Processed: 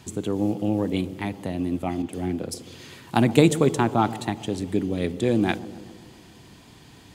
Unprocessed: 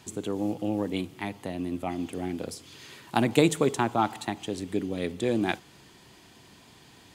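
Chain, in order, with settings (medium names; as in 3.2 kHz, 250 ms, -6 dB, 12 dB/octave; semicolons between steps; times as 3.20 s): bass shelf 220 Hz +8 dB; feedback echo behind a low-pass 131 ms, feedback 62%, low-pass 720 Hz, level -14.5 dB; 2.02–2.54 s: three bands expanded up and down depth 100%; trim +2 dB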